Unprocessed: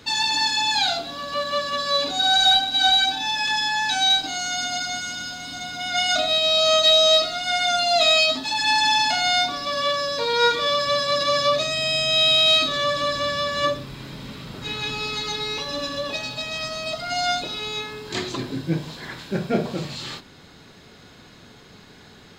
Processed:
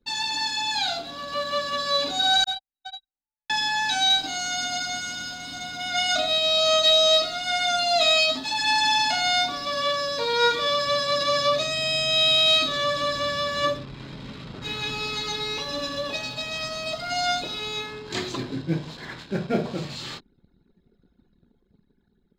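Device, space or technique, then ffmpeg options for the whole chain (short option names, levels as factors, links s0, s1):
voice memo with heavy noise removal: -filter_complex "[0:a]asettb=1/sr,asplit=3[s0][s1][s2];[s0]atrim=end=2.444[s3];[s1]atrim=start=2.44:end=3.5,asetpts=PTS-STARTPTS,afade=t=in:d=0.004:c=qsin,afade=t=out:st=1.056:d=0.004:c=qsin,agate=range=0.00631:threshold=0.224:ratio=16:detection=peak[s4];[s2]atrim=start=3.496[s5];[s3][s4]acrossfade=d=0.004:c1=hsin:c2=qsin[s6];[s6][s5]acrossfade=d=0.004:c1=qsin:c2=hsin,anlmdn=0.631,dynaudnorm=f=170:g=13:m=1.58,volume=0.531"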